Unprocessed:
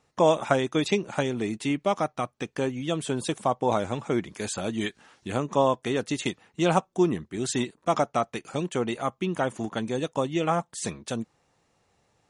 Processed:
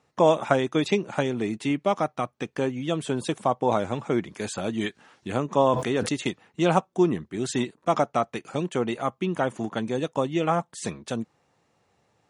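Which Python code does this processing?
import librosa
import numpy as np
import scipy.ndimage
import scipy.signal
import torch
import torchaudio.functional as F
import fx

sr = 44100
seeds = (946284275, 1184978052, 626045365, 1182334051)

y = scipy.signal.sosfilt(scipy.signal.butter(2, 81.0, 'highpass', fs=sr, output='sos'), x)
y = fx.high_shelf(y, sr, hz=4400.0, db=-6.0)
y = fx.sustainer(y, sr, db_per_s=52.0, at=(5.55, 6.09))
y = y * librosa.db_to_amplitude(1.5)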